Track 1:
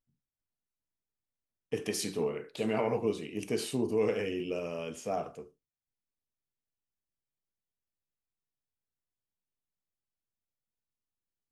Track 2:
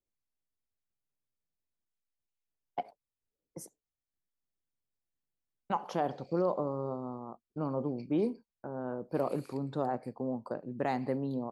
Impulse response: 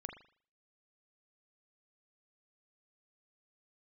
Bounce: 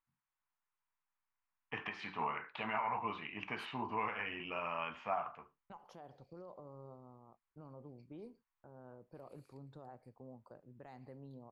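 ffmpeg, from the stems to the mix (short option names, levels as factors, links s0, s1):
-filter_complex "[0:a]lowpass=f=2600:w=0.5412,lowpass=f=2600:w=1.3066,lowshelf=f=660:t=q:w=3:g=-13.5,acontrast=36,volume=0.891[s0];[1:a]asubboost=boost=5.5:cutoff=89,alimiter=level_in=1.26:limit=0.0631:level=0:latency=1:release=88,volume=0.794,volume=0.15[s1];[s0][s1]amix=inputs=2:normalize=0,alimiter=level_in=1.26:limit=0.0631:level=0:latency=1:release=358,volume=0.794"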